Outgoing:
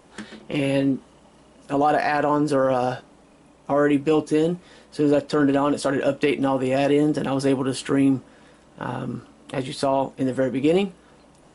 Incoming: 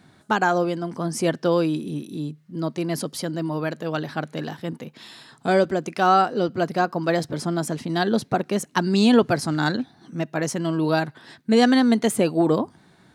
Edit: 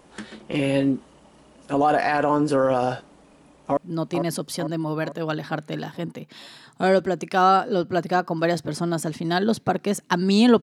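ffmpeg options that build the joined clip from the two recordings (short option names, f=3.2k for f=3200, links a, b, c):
-filter_complex "[0:a]apad=whole_dur=10.62,atrim=end=10.62,atrim=end=3.772[a];[1:a]atrim=start=2.418:end=9.27[b];[a][b]acrossfade=d=0.004:c1=hsin:c2=hsin,asplit=2[c][d];[d]afade=t=in:st=3.22:d=0.01,afade=t=out:st=3.77:d=0.01,aecho=0:1:450|900|1350|1800|2250|2700|3150:0.501187|0.275653|0.151609|0.083385|0.0458618|0.025224|0.0138732[e];[c][e]amix=inputs=2:normalize=0"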